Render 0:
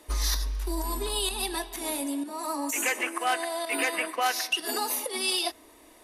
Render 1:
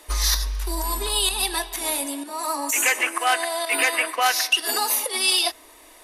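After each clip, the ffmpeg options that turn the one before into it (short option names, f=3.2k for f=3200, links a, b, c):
-af "equalizer=f=170:t=o:w=2.8:g=-12,volume=8dB"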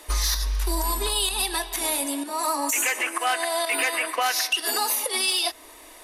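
-af "acontrast=76,alimiter=limit=-10.5dB:level=0:latency=1:release=186,volume=-4.5dB"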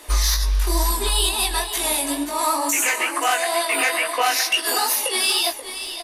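-af "flanger=delay=17:depth=5.7:speed=2.2,aecho=1:1:532:0.299,volume=6.5dB"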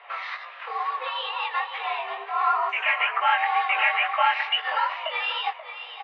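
-af "highpass=f=530:t=q:w=0.5412,highpass=f=530:t=q:w=1.307,lowpass=f=2.7k:t=q:w=0.5176,lowpass=f=2.7k:t=q:w=0.7071,lowpass=f=2.7k:t=q:w=1.932,afreqshift=110"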